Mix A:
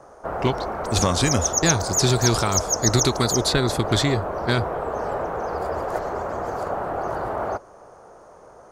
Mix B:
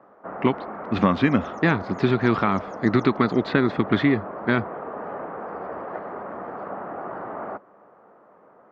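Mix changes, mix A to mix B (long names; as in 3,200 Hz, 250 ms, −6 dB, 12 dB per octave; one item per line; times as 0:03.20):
background −7.5 dB
master: add loudspeaker in its box 160–2,700 Hz, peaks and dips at 200 Hz +9 dB, 280 Hz +6 dB, 1,200 Hz +4 dB, 1,900 Hz +4 dB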